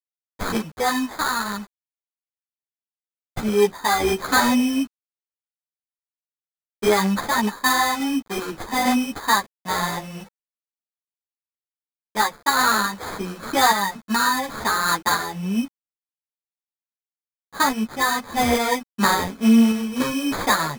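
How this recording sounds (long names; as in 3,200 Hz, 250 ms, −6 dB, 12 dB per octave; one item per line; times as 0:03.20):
aliases and images of a low sample rate 2,800 Hz, jitter 0%
sample-and-hold tremolo
a quantiser's noise floor 8 bits, dither none
a shimmering, thickened sound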